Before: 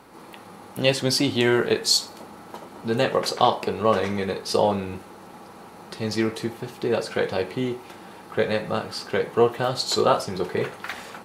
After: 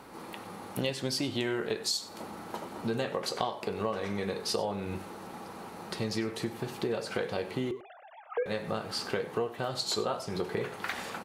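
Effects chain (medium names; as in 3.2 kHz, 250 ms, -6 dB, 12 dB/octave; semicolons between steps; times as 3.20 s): 7.71–8.46 s: formants replaced by sine waves; compression 6:1, threshold -29 dBFS, peak gain reduction 15.5 dB; delay 97 ms -18 dB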